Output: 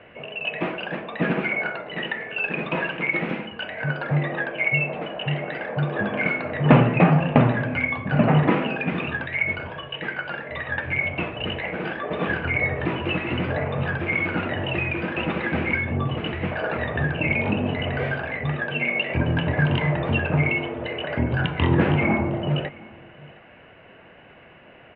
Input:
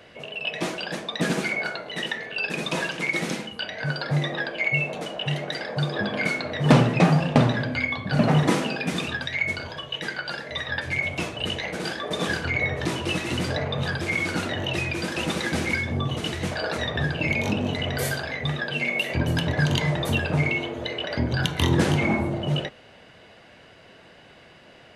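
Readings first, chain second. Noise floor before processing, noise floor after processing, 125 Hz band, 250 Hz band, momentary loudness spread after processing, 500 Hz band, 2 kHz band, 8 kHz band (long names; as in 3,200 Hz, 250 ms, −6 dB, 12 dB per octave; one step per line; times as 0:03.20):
−50 dBFS, −49 dBFS, +1.5 dB, +1.5 dB, 10 LU, +2.0 dB, +2.0 dB, below −40 dB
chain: Chebyshev low-pass filter 2,700 Hz, order 4
single-tap delay 713 ms −23 dB
level +2.5 dB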